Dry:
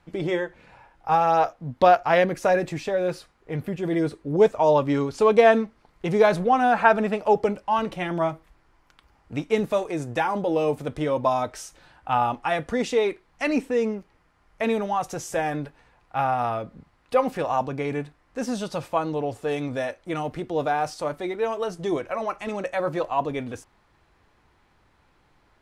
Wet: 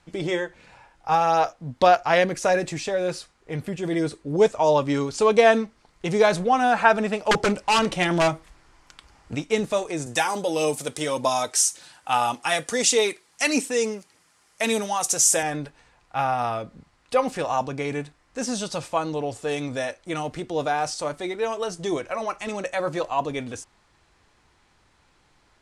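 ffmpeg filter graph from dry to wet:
-filter_complex "[0:a]asettb=1/sr,asplit=3[a][b][c];[a]atrim=end=7.314[d];[b]atrim=start=7.31:end=9.35,asetpts=PTS-STARTPTS,afade=t=in:d=0.004:c=qsin,afade=t=out:st=2.036:d=0.004:c=qsin,acontrast=47,aeval=exprs='0.2*(abs(mod(val(0)/0.2+3,4)-2)-1)':c=same[e];[c]atrim=start=9.346[f];[d][e]acrossfade=d=0.004:c1=hsin:c2=qsin[g];[g][f]acrossfade=d=0.004:c1=qsin:c2=hsin,asettb=1/sr,asplit=3[h][i][j];[h]atrim=end=10.064[k];[i]atrim=start=10.06:end=15.43,asetpts=PTS-STARTPTS,afade=t=in:d=0.004:c=qsin,afade=t=out:st=5.366:d=0.004:c=qsin,aemphasis=mode=production:type=75fm,aphaser=in_gain=1:out_gain=1:delay=2.7:decay=0.26:speed=1.7:type=triangular,highpass=150[l];[j]atrim=start=15.426[m];[k][l]acrossfade=d=0.004:c1=hsin:c2=qsin[n];[n][m]acrossfade=d=0.004:c1=qsin:c2=hsin,lowpass=f=8.6k:w=0.5412,lowpass=f=8.6k:w=1.3066,aemphasis=mode=production:type=75fm"

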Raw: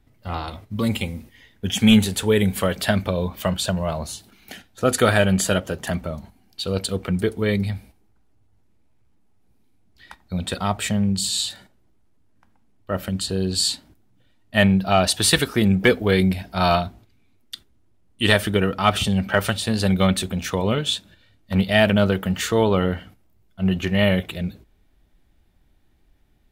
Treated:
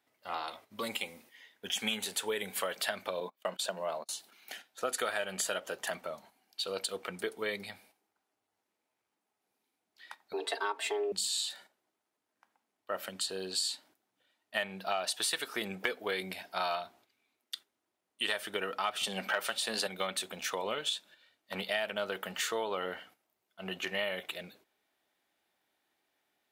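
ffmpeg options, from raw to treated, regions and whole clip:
-filter_complex "[0:a]asettb=1/sr,asplit=3[a][b][c];[a]atrim=end=3.204[d];[b]atrim=start=3.2:end=4.09,asetpts=PTS-STARTPTS,afade=t=in:d=0.004:c=qsin,afade=t=out:st=0.886:d=0.004:c=qsin,highpass=f=180:w=0.5412,highpass=f=180:w=1.3066,agate=range=-31dB:threshold=-31dB:ratio=16:release=100:detection=peak,tiltshelf=f=670:g=3.5[e];[c]atrim=start=4.086[f];[d][e]acrossfade=d=0.004:c1=hsin:c2=qsin[g];[g][f]acrossfade=d=0.004:c1=qsin:c2=hsin,asettb=1/sr,asplit=3[h][i][j];[h]atrim=end=10.334[k];[i]atrim=start=10.33:end=11.12,asetpts=PTS-STARTPTS,afade=t=in:d=0.004:c=qsin,afade=t=out:st=0.786:d=0.004:c=qsin,aemphasis=mode=reproduction:type=cd,aecho=1:1:4.4:0.67,atrim=end_sample=34839,afreqshift=210[l];[j]atrim=start=11.116[m];[k][l]acrossfade=d=0.004:c1=hsin:c2=qsin[n];[n][m]acrossfade=d=0.004:c1=qsin:c2=hsin,asettb=1/sr,asplit=3[o][p][q];[o]atrim=end=19.034[r];[p]atrim=start=19.03:end=19.87,asetpts=PTS-STARTPTS,afade=t=in:d=0.004:c=qsin,afade=t=out:st=0.836:d=0.004:c=qsin,highpass=140,acontrast=77[s];[q]atrim=start=19.866[t];[r][s]acrossfade=d=0.004:c1=hsin:c2=qsin[u];[u][t]acrossfade=d=0.004:c1=qsin:c2=hsin,highpass=580,acompressor=threshold=-25dB:ratio=6,volume=-5dB"

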